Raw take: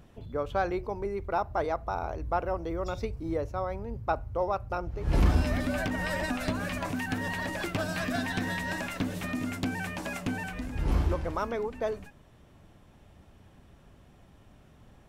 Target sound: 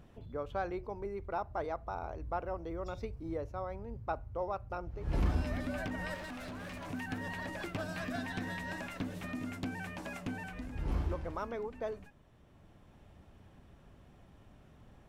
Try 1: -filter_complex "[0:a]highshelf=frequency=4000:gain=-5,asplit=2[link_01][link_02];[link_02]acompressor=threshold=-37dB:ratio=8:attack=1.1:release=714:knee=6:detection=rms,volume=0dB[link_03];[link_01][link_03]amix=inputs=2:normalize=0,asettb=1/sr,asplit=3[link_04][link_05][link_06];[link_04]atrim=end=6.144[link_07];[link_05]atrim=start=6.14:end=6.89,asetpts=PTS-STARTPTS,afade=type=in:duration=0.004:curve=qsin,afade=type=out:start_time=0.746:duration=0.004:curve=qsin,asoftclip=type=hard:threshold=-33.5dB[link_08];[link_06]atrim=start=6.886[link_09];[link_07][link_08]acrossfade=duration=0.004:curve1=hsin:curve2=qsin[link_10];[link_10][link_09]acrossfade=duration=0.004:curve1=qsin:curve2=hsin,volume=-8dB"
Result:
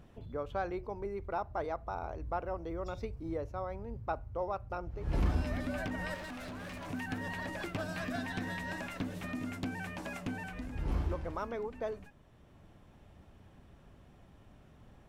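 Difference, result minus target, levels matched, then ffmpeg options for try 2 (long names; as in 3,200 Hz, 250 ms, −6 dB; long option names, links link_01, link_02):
downward compressor: peak gain reduction −6.5 dB
-filter_complex "[0:a]highshelf=frequency=4000:gain=-5,asplit=2[link_01][link_02];[link_02]acompressor=threshold=-44.5dB:ratio=8:attack=1.1:release=714:knee=6:detection=rms,volume=0dB[link_03];[link_01][link_03]amix=inputs=2:normalize=0,asettb=1/sr,asplit=3[link_04][link_05][link_06];[link_04]atrim=end=6.144[link_07];[link_05]atrim=start=6.14:end=6.89,asetpts=PTS-STARTPTS,afade=type=in:duration=0.004:curve=qsin,afade=type=out:start_time=0.746:duration=0.004:curve=qsin,asoftclip=type=hard:threshold=-33.5dB[link_08];[link_06]atrim=start=6.886[link_09];[link_07][link_08]acrossfade=duration=0.004:curve1=hsin:curve2=qsin[link_10];[link_10][link_09]acrossfade=duration=0.004:curve1=qsin:curve2=hsin,volume=-8dB"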